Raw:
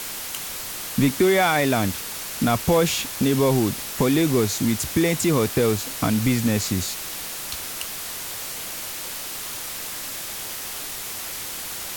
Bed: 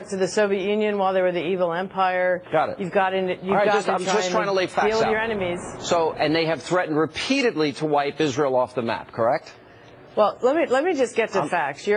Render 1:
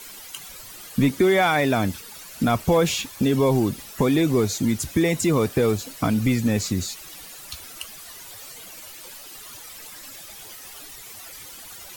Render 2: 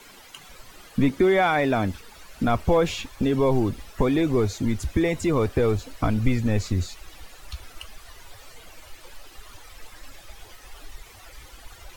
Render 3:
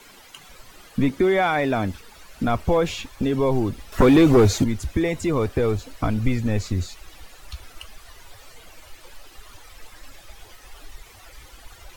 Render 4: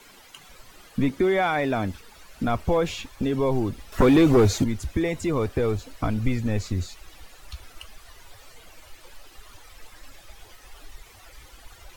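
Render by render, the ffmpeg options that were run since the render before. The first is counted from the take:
ffmpeg -i in.wav -af "afftdn=noise_reduction=13:noise_floor=-33" out.wav
ffmpeg -i in.wav -af "lowpass=frequency=2200:poles=1,asubboost=boost=10.5:cutoff=51" out.wav
ffmpeg -i in.wav -filter_complex "[0:a]asettb=1/sr,asplit=3[link_01][link_02][link_03];[link_01]atrim=end=3.924[link_04];[link_02]atrim=start=3.92:end=4.64,asetpts=PTS-STARTPTS,afade=type=in:duration=0.004:curve=qsin,afade=type=out:start_time=0.716:duration=0.004:curve=qsin,aeval=exprs='0.355*sin(PI/2*2*val(0)/0.355)':channel_layout=same[link_05];[link_03]atrim=start=4.636[link_06];[link_04][link_05]acrossfade=duration=0.004:curve1=hsin:curve2=qsin[link_07];[link_07][link_06]acrossfade=duration=0.004:curve1=qsin:curve2=hsin" out.wav
ffmpeg -i in.wav -af "volume=-2.5dB" out.wav

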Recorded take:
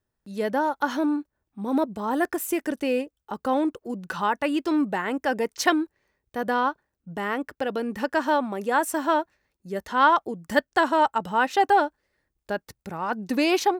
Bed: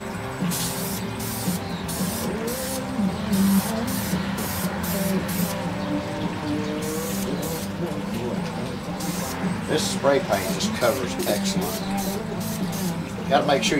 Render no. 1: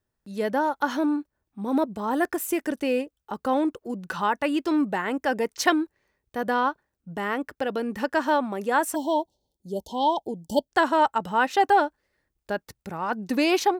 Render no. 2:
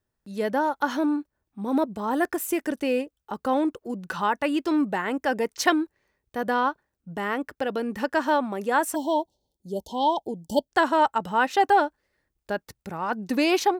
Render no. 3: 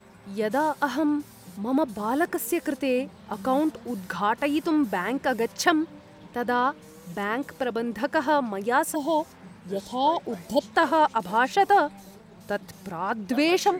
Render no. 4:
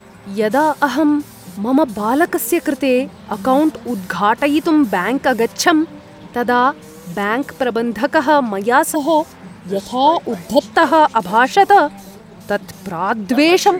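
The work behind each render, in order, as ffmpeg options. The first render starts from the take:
ffmpeg -i in.wav -filter_complex "[0:a]asplit=3[link_01][link_02][link_03];[link_01]afade=type=out:start_time=8.94:duration=0.02[link_04];[link_02]asuperstop=centerf=1700:order=20:qfactor=0.82,afade=type=in:start_time=8.94:duration=0.02,afade=type=out:start_time=10.68:duration=0.02[link_05];[link_03]afade=type=in:start_time=10.68:duration=0.02[link_06];[link_04][link_05][link_06]amix=inputs=3:normalize=0" out.wav
ffmpeg -i in.wav -af anull out.wav
ffmpeg -i in.wav -i bed.wav -filter_complex "[1:a]volume=-20.5dB[link_01];[0:a][link_01]amix=inputs=2:normalize=0" out.wav
ffmpeg -i in.wav -af "volume=10dB,alimiter=limit=-1dB:level=0:latency=1" out.wav

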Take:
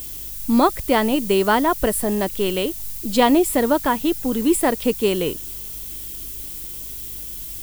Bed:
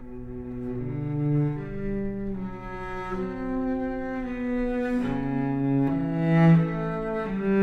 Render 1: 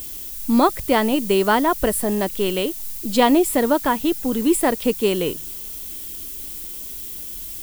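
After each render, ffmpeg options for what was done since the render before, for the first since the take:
ffmpeg -i in.wav -af "bandreject=frequency=50:width_type=h:width=4,bandreject=frequency=100:width_type=h:width=4,bandreject=frequency=150:width_type=h:width=4" out.wav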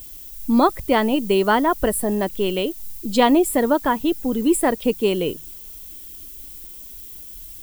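ffmpeg -i in.wav -af "afftdn=noise_reduction=8:noise_floor=-33" out.wav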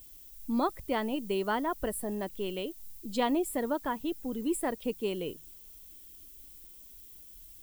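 ffmpeg -i in.wav -af "volume=-13dB" out.wav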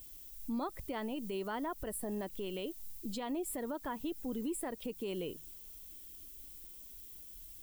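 ffmpeg -i in.wav -af "acompressor=threshold=-30dB:ratio=6,alimiter=level_in=6dB:limit=-24dB:level=0:latency=1:release=94,volume=-6dB" out.wav

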